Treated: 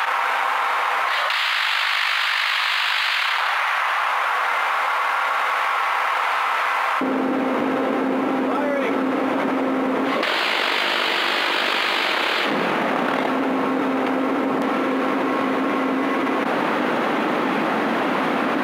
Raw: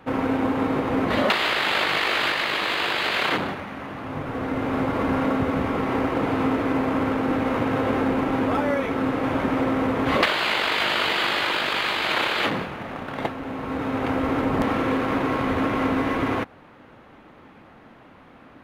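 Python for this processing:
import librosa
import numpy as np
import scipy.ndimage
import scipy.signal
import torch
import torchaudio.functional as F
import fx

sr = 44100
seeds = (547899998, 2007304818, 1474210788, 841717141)

y = fx.highpass(x, sr, hz=fx.steps((0.0, 910.0), (7.01, 210.0)), slope=24)
y = fx.env_flatten(y, sr, amount_pct=100)
y = F.gain(torch.from_numpy(y), -4.5).numpy()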